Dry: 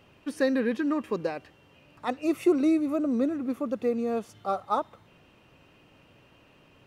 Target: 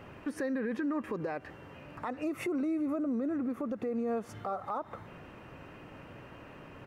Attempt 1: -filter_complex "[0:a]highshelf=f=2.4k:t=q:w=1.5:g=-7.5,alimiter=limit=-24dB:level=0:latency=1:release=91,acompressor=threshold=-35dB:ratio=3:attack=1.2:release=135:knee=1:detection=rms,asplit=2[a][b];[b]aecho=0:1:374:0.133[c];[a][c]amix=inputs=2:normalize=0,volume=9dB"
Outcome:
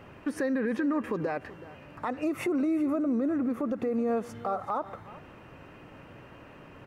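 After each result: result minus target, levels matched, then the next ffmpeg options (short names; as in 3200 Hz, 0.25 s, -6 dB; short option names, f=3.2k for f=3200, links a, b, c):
echo-to-direct +11.5 dB; compressor: peak gain reduction -4.5 dB
-filter_complex "[0:a]highshelf=f=2.4k:t=q:w=1.5:g=-7.5,alimiter=limit=-24dB:level=0:latency=1:release=91,acompressor=threshold=-35dB:ratio=3:attack=1.2:release=135:knee=1:detection=rms,asplit=2[a][b];[b]aecho=0:1:374:0.0355[c];[a][c]amix=inputs=2:normalize=0,volume=9dB"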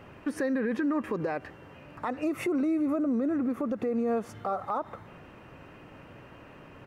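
compressor: peak gain reduction -4.5 dB
-filter_complex "[0:a]highshelf=f=2.4k:t=q:w=1.5:g=-7.5,alimiter=limit=-24dB:level=0:latency=1:release=91,acompressor=threshold=-42dB:ratio=3:attack=1.2:release=135:knee=1:detection=rms,asplit=2[a][b];[b]aecho=0:1:374:0.0355[c];[a][c]amix=inputs=2:normalize=0,volume=9dB"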